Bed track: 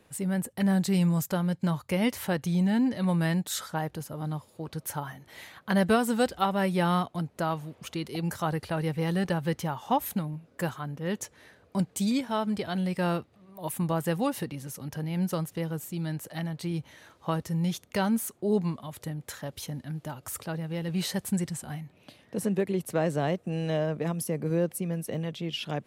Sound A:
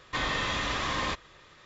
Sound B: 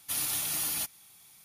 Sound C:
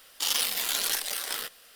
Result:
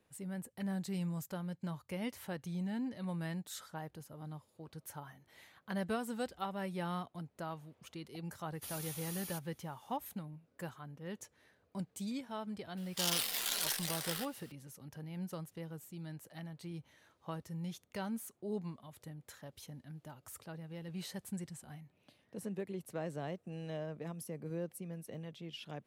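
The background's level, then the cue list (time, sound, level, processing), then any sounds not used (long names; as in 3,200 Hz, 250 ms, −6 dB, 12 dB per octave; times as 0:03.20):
bed track −13.5 dB
0:08.53: mix in B −14.5 dB
0:12.77: mix in C −7.5 dB
not used: A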